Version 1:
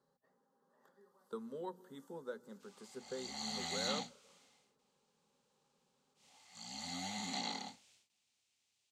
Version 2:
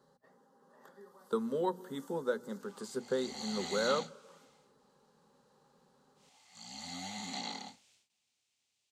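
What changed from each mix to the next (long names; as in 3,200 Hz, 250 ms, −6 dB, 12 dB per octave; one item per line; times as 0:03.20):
speech +11.5 dB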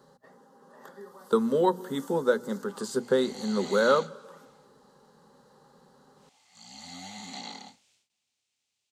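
speech +9.5 dB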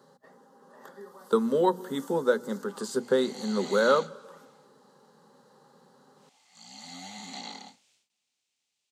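master: add high-pass filter 140 Hz 12 dB per octave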